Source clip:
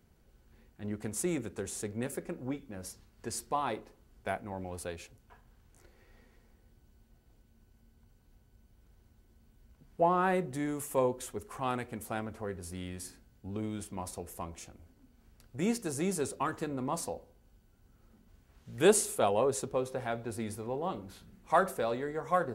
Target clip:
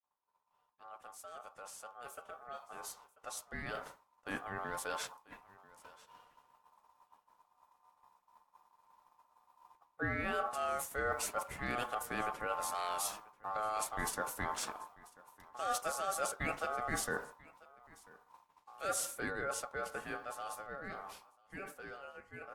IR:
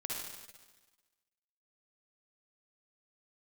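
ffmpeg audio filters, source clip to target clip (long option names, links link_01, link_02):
-af "agate=range=-33dB:threshold=-51dB:ratio=3:detection=peak,bandreject=frequency=60:width_type=h:width=6,bandreject=frequency=120:width_type=h:width=6,bandreject=frequency=180:width_type=h:width=6,areverse,acompressor=threshold=-43dB:ratio=8,areverse,aeval=exprs='val(0)*sin(2*PI*970*n/s)':channel_layout=same,aecho=1:1:990:0.075,dynaudnorm=framelen=380:gausssize=21:maxgain=14.5dB,volume=-2.5dB" -ar 48000 -c:a aac -b:a 64k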